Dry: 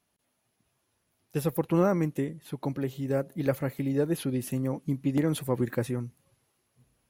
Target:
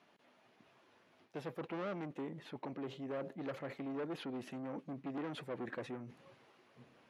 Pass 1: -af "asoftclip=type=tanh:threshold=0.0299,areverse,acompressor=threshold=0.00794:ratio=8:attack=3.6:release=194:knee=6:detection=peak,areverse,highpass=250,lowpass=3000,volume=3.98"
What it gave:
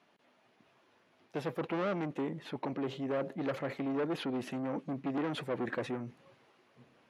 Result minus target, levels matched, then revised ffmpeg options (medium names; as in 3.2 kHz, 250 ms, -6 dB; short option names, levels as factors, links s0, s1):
compression: peak gain reduction -7.5 dB
-af "asoftclip=type=tanh:threshold=0.0299,areverse,acompressor=threshold=0.00299:ratio=8:attack=3.6:release=194:knee=6:detection=peak,areverse,highpass=250,lowpass=3000,volume=3.98"